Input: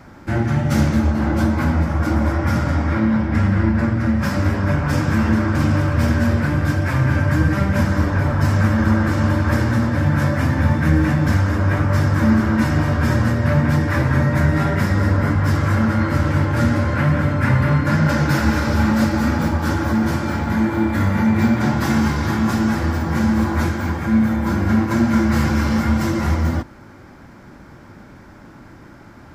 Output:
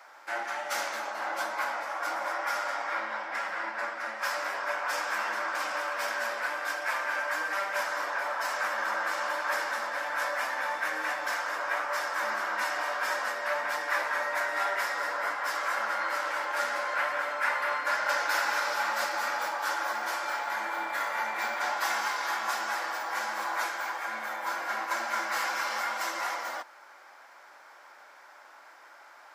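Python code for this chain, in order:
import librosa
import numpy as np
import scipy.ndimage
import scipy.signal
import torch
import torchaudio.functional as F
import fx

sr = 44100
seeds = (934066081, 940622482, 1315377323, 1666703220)

y = scipy.signal.sosfilt(scipy.signal.butter(4, 660.0, 'highpass', fs=sr, output='sos'), x)
y = y * librosa.db_to_amplitude(-3.5)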